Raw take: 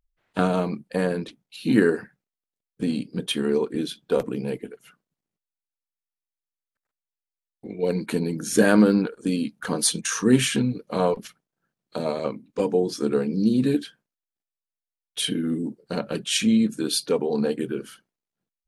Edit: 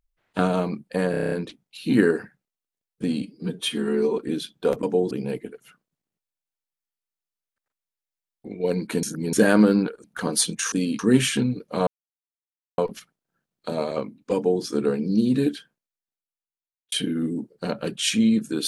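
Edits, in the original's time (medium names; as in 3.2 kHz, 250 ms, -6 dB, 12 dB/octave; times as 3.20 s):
1.11 s: stutter 0.03 s, 8 plays
3.01–3.65 s: stretch 1.5×
8.22–8.52 s: reverse
9.23–9.50 s: move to 10.18 s
11.06 s: insert silence 0.91 s
12.63–12.91 s: copy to 4.30 s
13.84–15.20 s: fade out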